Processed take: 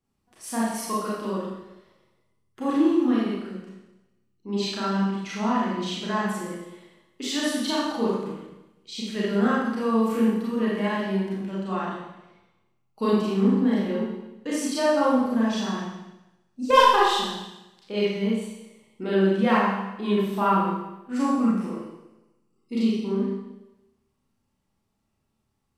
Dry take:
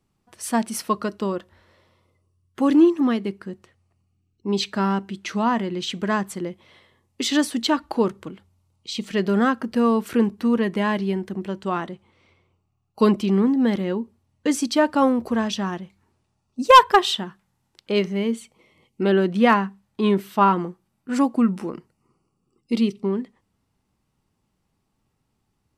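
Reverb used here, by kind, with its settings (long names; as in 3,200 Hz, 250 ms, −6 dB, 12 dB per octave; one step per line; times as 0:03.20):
four-comb reverb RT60 0.97 s, combs from 28 ms, DRR −7.5 dB
level −11 dB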